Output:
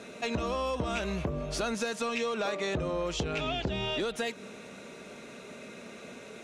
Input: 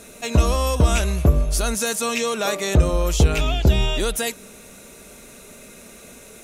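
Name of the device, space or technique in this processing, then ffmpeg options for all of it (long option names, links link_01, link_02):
AM radio: -filter_complex "[0:a]highpass=140,lowpass=3900,acompressor=threshold=-27dB:ratio=6,asoftclip=type=tanh:threshold=-21dB,asettb=1/sr,asplit=3[link_01][link_02][link_03];[link_01]atrim=end=2.514[link_04];[link_02]atrim=start=2.51:end=3.95,asetpts=PTS-STARTPTS,afade=type=in:duration=0.004:curve=qsin,afade=type=out:start_time=1.436:duration=0.004:curve=qsin,lowpass=frequency=11000:width=0.5412,lowpass=frequency=11000:width=1.3066[link_05];[link_03]atrim=start=3.946[link_06];[link_04][link_05]acrossfade=duration=0.004:curve1=hsin:curve2=qsin[link_07];[link_07][link_06]acrossfade=duration=0.004:curve1=qsin:curve2=hsin"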